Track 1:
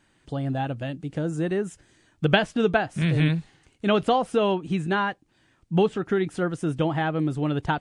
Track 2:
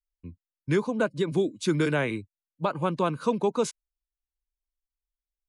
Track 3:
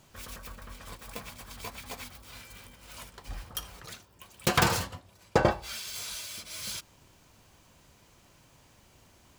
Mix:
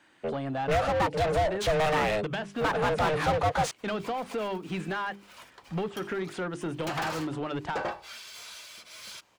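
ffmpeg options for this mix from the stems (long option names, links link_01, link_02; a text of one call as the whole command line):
ffmpeg -i stem1.wav -i stem2.wav -i stem3.wav -filter_complex "[0:a]bandreject=frequency=50:width_type=h:width=6,bandreject=frequency=100:width_type=h:width=6,bandreject=frequency=150:width_type=h:width=6,bandreject=frequency=200:width_type=h:width=6,bandreject=frequency=250:width_type=h:width=6,bandreject=frequency=300:width_type=h:width=6,bandreject=frequency=350:width_type=h:width=6,bandreject=frequency=400:width_type=h:width=6,acrossover=split=200[link_01][link_02];[link_02]acompressor=threshold=-28dB:ratio=10[link_03];[link_01][link_03]amix=inputs=2:normalize=0,volume=-13dB[link_04];[1:a]aeval=exprs='val(0)*sin(2*PI*310*n/s)':channel_layout=same,volume=3dB,asplit=2[link_05][link_06];[2:a]adelay=2400,volume=-19.5dB[link_07];[link_06]apad=whole_len=519815[link_08];[link_07][link_08]sidechaincompress=threshold=-35dB:ratio=12:attack=16:release=424[link_09];[link_04][link_05][link_09]amix=inputs=3:normalize=0,asplit=2[link_10][link_11];[link_11]highpass=frequency=720:poles=1,volume=26dB,asoftclip=type=tanh:threshold=-20.5dB[link_12];[link_10][link_12]amix=inputs=2:normalize=0,lowpass=frequency=2600:poles=1,volume=-6dB" out.wav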